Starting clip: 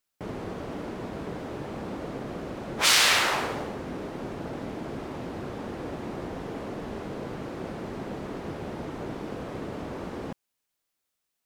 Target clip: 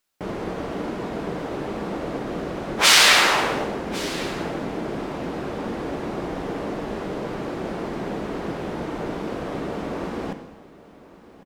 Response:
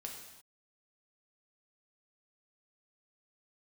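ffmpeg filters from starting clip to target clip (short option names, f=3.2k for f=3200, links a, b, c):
-filter_complex "[0:a]equalizer=f=97:t=o:w=1.4:g=-5.5,aecho=1:1:1103:0.119,asplit=2[a][b];[1:a]atrim=start_sample=2205,highshelf=f=9.3k:g=-9.5[c];[b][c]afir=irnorm=-1:irlink=0,volume=4dB[d];[a][d]amix=inputs=2:normalize=0,volume=1dB"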